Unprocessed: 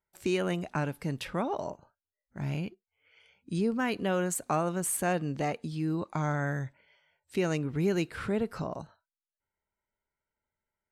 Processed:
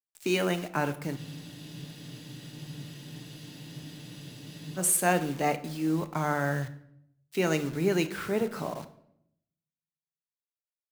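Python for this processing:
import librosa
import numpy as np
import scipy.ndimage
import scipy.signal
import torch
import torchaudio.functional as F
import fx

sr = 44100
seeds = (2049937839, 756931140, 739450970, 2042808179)

y = fx.highpass(x, sr, hz=240.0, slope=6)
y = fx.quant_dither(y, sr, seeds[0], bits=8, dither='none')
y = fx.room_shoebox(y, sr, seeds[1], volume_m3=320.0, walls='mixed', distance_m=0.39)
y = fx.spec_freeze(y, sr, seeds[2], at_s=1.18, hold_s=3.6)
y = fx.band_widen(y, sr, depth_pct=40)
y = y * 10.0 ** (3.0 / 20.0)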